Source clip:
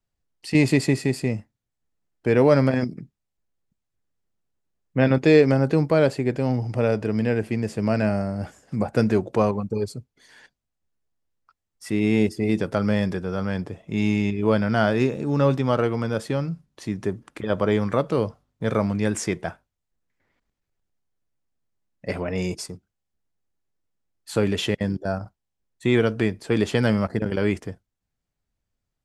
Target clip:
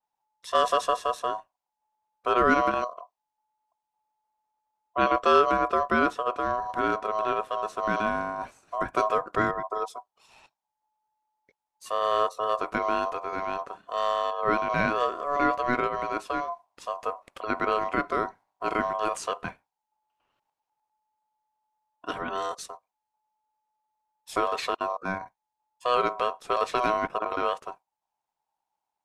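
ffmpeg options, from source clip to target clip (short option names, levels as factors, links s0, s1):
-af "aeval=exprs='val(0)*sin(2*PI*860*n/s)':c=same,adynamicequalizer=threshold=0.0112:dfrequency=3900:dqfactor=0.7:tfrequency=3900:tqfactor=0.7:attack=5:release=100:ratio=0.375:range=2:mode=cutabove:tftype=highshelf,volume=0.794"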